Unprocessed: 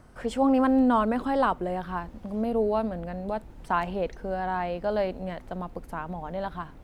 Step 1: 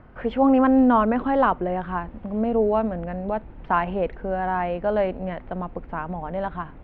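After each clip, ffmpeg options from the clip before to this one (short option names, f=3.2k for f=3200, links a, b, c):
-af "lowpass=f=2.8k:w=0.5412,lowpass=f=2.8k:w=1.3066,volume=4.5dB"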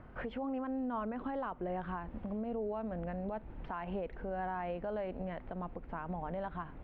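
-af "acompressor=threshold=-26dB:ratio=2.5,alimiter=level_in=1.5dB:limit=-24dB:level=0:latency=1:release=215,volume=-1.5dB,volume=-4.5dB"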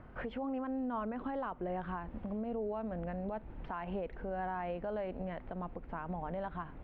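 -af anull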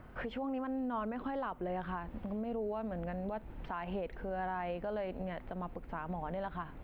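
-af "crystalizer=i=2.5:c=0"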